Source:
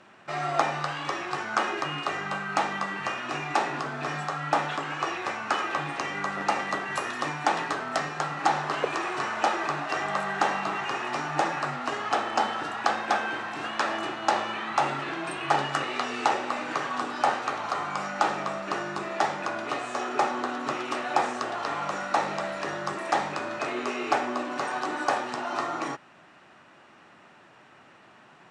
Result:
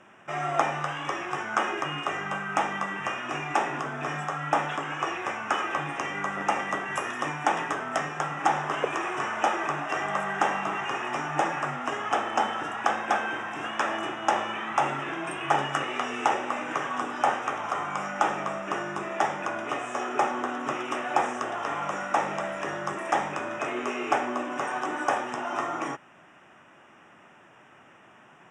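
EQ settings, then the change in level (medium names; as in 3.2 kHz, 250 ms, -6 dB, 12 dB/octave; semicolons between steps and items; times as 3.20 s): Butterworth band-stop 4.3 kHz, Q 2.2; 0.0 dB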